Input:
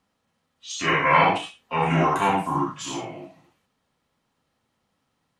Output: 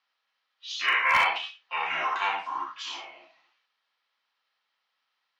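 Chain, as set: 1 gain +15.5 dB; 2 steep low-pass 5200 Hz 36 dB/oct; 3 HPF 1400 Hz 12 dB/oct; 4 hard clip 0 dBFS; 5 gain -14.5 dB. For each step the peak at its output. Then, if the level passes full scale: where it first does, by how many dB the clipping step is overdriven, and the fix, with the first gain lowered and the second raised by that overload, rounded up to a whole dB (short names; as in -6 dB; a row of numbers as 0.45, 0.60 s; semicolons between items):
+10.5, +10.5, +6.5, 0.0, -14.5 dBFS; step 1, 6.5 dB; step 1 +8.5 dB, step 5 -7.5 dB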